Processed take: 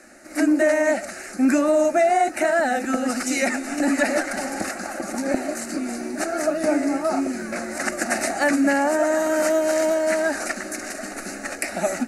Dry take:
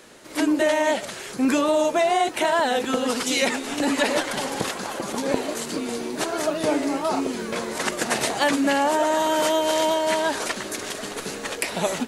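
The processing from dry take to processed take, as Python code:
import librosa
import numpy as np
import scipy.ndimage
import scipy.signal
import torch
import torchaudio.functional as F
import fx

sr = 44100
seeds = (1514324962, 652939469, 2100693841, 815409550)

y = scipy.signal.sosfilt(scipy.signal.butter(2, 11000.0, 'lowpass', fs=sr, output='sos'), x)
y = fx.fixed_phaser(y, sr, hz=670.0, stages=8)
y = y * 10.0 ** (3.0 / 20.0)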